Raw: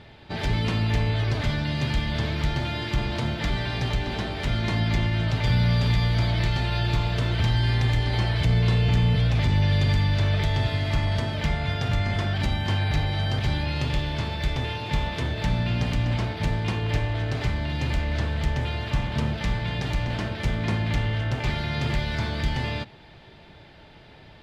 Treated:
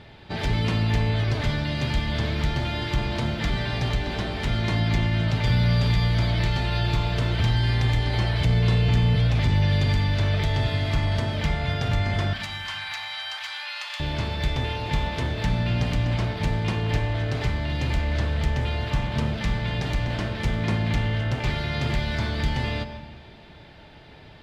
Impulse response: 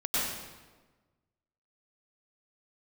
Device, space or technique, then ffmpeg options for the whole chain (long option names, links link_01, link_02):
ducked reverb: -filter_complex "[0:a]asettb=1/sr,asplit=3[link_01][link_02][link_03];[link_01]atrim=end=12.334[link_04];[link_02]atrim=start=12.33:end=14,asetpts=PTS-STARTPTS,afade=type=in:duration=0.004:curve=qsin,afade=type=out:start_time=1.666:duration=0.004:curve=qsin,highpass=frequency=1000:width=0.5412,highpass=frequency=1000:width=1.3066[link_05];[link_03]atrim=start=13.996[link_06];[link_04][link_05]acrossfade=duration=0.004:curve1=hsin:curve2=qsin[link_07];[link_07][link_06]acrossfade=duration=0.004:curve1=qsin:curve2=hsin,asplit=3[link_08][link_09][link_10];[1:a]atrim=start_sample=2205[link_11];[link_09][link_11]afir=irnorm=-1:irlink=0[link_12];[link_10]apad=whole_len=1076967[link_13];[link_12][link_13]sidechaincompress=threshold=-26dB:ratio=8:attack=16:release=900,volume=-17.5dB[link_14];[link_08][link_14]amix=inputs=2:normalize=0"